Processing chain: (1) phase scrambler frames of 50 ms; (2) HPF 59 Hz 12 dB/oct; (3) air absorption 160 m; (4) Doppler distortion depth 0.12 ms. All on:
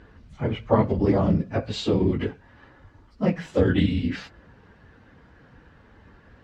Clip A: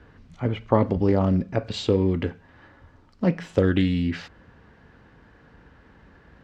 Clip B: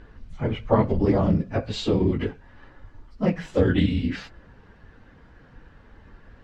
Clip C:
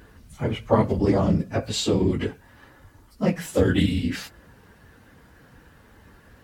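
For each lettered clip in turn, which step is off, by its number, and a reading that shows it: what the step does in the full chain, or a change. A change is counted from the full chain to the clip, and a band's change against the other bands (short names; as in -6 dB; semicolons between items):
1, momentary loudness spread change -1 LU; 2, crest factor change -1.5 dB; 3, 4 kHz band +4.0 dB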